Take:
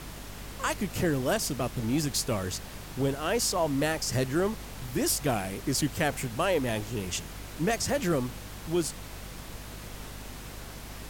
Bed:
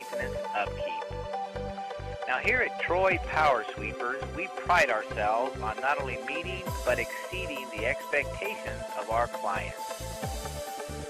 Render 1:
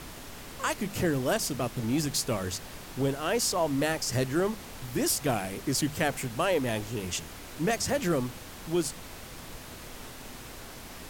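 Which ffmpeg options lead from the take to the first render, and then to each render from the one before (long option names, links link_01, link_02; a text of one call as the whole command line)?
ffmpeg -i in.wav -af "bandreject=frequency=50:width_type=h:width=6,bandreject=frequency=100:width_type=h:width=6,bandreject=frequency=150:width_type=h:width=6,bandreject=frequency=200:width_type=h:width=6" out.wav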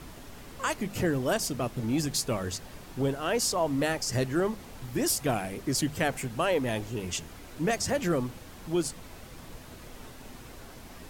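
ffmpeg -i in.wav -af "afftdn=noise_reduction=6:noise_floor=-44" out.wav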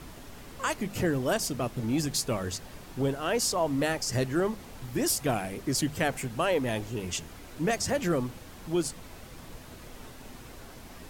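ffmpeg -i in.wav -af anull out.wav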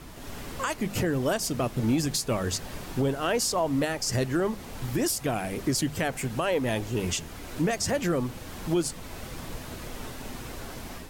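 ffmpeg -i in.wav -af "alimiter=level_in=0.5dB:limit=-24dB:level=0:latency=1:release=437,volume=-0.5dB,dynaudnorm=framelen=150:gausssize=3:maxgain=7.5dB" out.wav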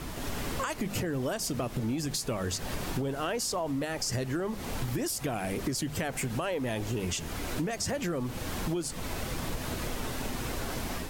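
ffmpeg -i in.wav -filter_complex "[0:a]asplit=2[link_01][link_02];[link_02]alimiter=level_in=1.5dB:limit=-24dB:level=0:latency=1,volume=-1.5dB,volume=0dB[link_03];[link_01][link_03]amix=inputs=2:normalize=0,acompressor=threshold=-29dB:ratio=6" out.wav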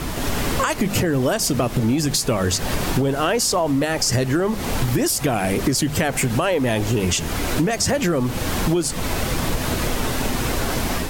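ffmpeg -i in.wav -af "volume=12dB" out.wav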